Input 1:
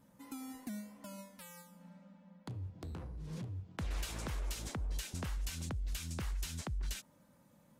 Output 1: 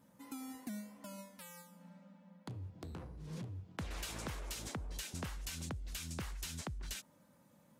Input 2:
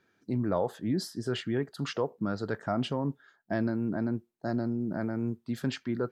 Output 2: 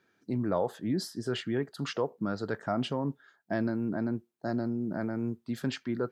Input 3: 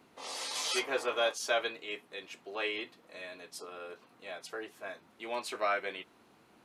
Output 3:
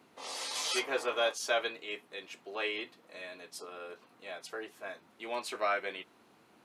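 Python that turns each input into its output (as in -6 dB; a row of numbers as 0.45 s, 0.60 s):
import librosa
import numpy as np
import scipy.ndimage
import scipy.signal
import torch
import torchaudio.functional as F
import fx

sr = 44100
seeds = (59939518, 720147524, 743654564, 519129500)

y = fx.highpass(x, sr, hz=100.0, slope=6)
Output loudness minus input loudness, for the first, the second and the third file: -2.5 LU, -0.5 LU, 0.0 LU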